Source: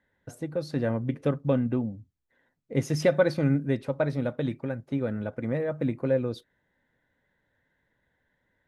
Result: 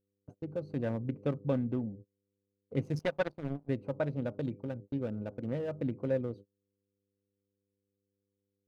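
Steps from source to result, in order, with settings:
adaptive Wiener filter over 25 samples
hum with harmonics 100 Hz, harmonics 5, −49 dBFS −1 dB per octave
noise gate −40 dBFS, range −30 dB
0:02.99–0:03.69: power curve on the samples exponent 2
level −6 dB

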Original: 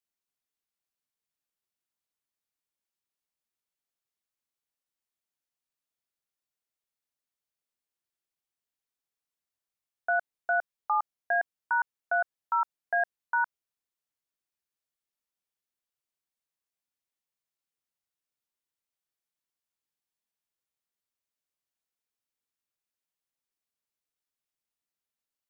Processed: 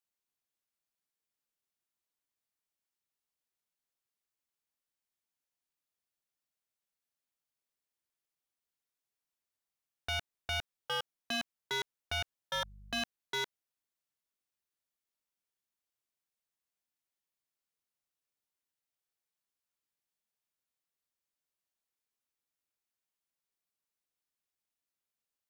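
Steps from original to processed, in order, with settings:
wave folding −26.5 dBFS
0:12.53–0:13.02: hum with harmonics 50 Hz, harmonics 4, −52 dBFS −8 dB per octave
level −1.5 dB

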